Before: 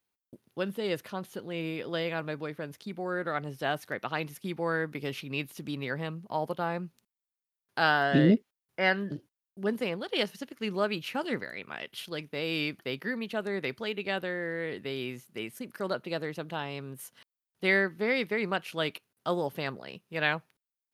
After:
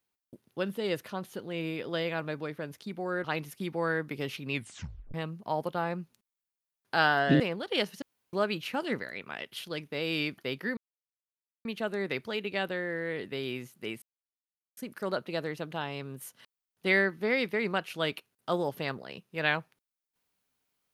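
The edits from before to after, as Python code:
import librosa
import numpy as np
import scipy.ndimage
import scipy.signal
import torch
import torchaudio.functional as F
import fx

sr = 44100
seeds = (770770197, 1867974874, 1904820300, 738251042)

y = fx.edit(x, sr, fx.cut(start_s=3.24, length_s=0.84),
    fx.tape_stop(start_s=5.36, length_s=0.62),
    fx.cut(start_s=8.24, length_s=1.57),
    fx.room_tone_fill(start_s=10.43, length_s=0.31),
    fx.insert_silence(at_s=13.18, length_s=0.88),
    fx.insert_silence(at_s=15.55, length_s=0.75), tone=tone)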